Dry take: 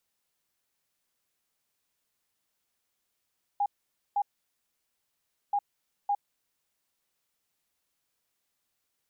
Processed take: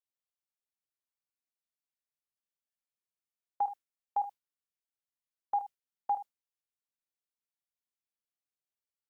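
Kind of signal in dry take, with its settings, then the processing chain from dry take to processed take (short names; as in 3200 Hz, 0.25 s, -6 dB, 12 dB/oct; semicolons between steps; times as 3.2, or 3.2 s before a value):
beep pattern sine 813 Hz, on 0.06 s, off 0.50 s, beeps 2, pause 1.31 s, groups 2, -23.5 dBFS
gate with hold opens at -28 dBFS; on a send: early reflections 29 ms -13.5 dB, 76 ms -14.5 dB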